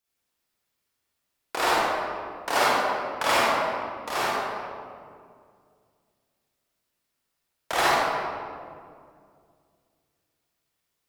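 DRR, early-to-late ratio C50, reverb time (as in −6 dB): −8.5 dB, −5.5 dB, 2.2 s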